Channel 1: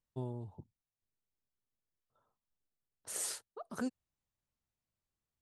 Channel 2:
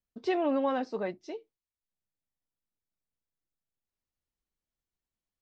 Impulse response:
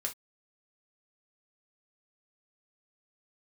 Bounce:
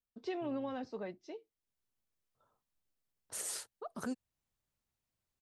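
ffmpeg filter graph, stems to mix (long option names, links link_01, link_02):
-filter_complex "[0:a]adelay=250,volume=2dB[link_01];[1:a]acrossover=split=320|3000[link_02][link_03][link_04];[link_03]acompressor=threshold=-33dB:ratio=6[link_05];[link_02][link_05][link_04]amix=inputs=3:normalize=0,volume=-7dB,asplit=2[link_06][link_07];[link_07]apad=whole_len=249656[link_08];[link_01][link_08]sidechaincompress=threshold=-52dB:ratio=8:attack=16:release=611[link_09];[link_09][link_06]amix=inputs=2:normalize=0,alimiter=level_in=4.5dB:limit=-24dB:level=0:latency=1:release=350,volume=-4.5dB"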